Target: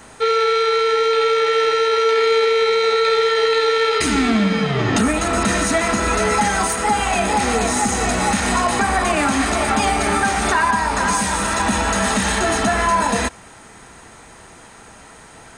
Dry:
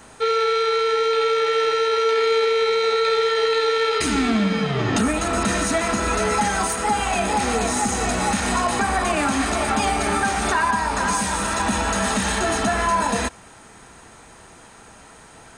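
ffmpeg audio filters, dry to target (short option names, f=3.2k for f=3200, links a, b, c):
-af "equalizer=f=2k:t=o:w=0.2:g=3,volume=3dB"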